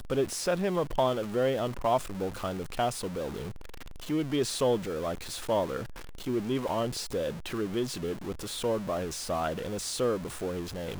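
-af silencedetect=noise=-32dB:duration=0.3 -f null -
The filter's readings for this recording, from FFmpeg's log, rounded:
silence_start: 3.49
silence_end: 4.10 | silence_duration: 0.61
silence_start: 5.83
silence_end: 6.27 | silence_duration: 0.44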